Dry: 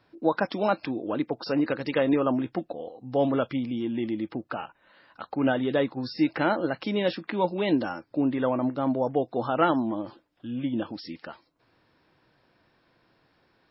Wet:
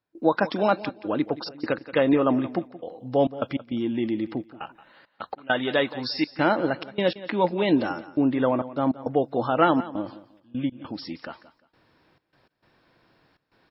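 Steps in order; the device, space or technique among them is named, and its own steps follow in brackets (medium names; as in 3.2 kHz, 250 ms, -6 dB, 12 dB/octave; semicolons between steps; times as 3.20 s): 5.36–6.39 s: tilt shelf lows -6.5 dB, about 720 Hz; trance gate with a delay (trance gate ".xxxxx.xxx.x" 101 bpm -24 dB; feedback delay 175 ms, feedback 26%, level -16.5 dB); trim +3 dB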